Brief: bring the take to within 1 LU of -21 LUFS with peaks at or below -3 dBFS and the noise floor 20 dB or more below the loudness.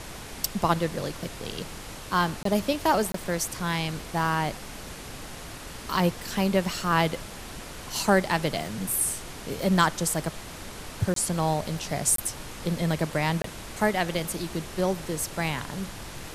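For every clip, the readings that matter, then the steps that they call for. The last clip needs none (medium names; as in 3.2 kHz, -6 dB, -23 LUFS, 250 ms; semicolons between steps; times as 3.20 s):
dropouts 5; longest dropout 23 ms; noise floor -41 dBFS; noise floor target -48 dBFS; loudness -27.5 LUFS; peak level -5.0 dBFS; loudness target -21.0 LUFS
-> interpolate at 2.43/3.12/11.14/12.16/13.42 s, 23 ms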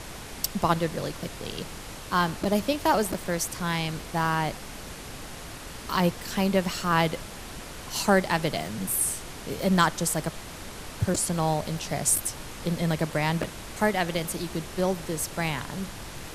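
dropouts 0; noise floor -41 dBFS; noise floor target -47 dBFS
-> noise print and reduce 6 dB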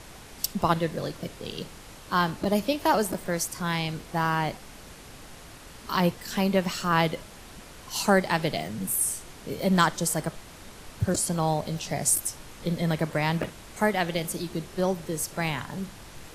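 noise floor -46 dBFS; noise floor target -48 dBFS
-> noise print and reduce 6 dB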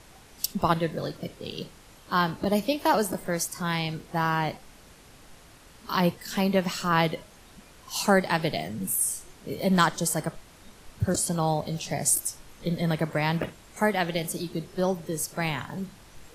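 noise floor -52 dBFS; loudness -27.5 LUFS; peak level -5.0 dBFS; loudness target -21.0 LUFS
-> trim +6.5 dB; peak limiter -3 dBFS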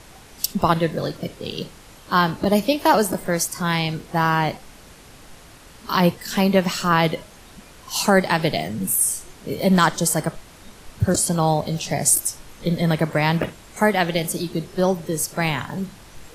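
loudness -21.0 LUFS; peak level -3.0 dBFS; noise floor -46 dBFS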